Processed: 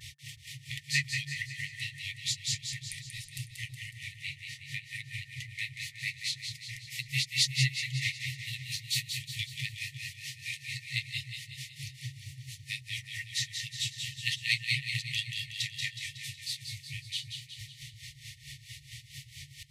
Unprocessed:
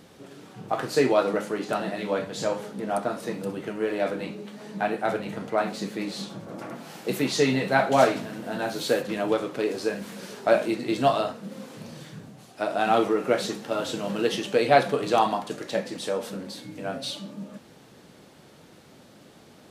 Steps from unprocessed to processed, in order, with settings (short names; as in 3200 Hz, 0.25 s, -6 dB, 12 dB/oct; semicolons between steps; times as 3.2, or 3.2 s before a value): grains 0.151 s, grains 4.5/s, pitch spread up and down by 0 st; FFT band-reject 150–1800 Hz; in parallel at +2 dB: upward compressor, threshold -39 dBFS; on the sum: split-band echo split 1400 Hz, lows 0.331 s, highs 0.184 s, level -6 dB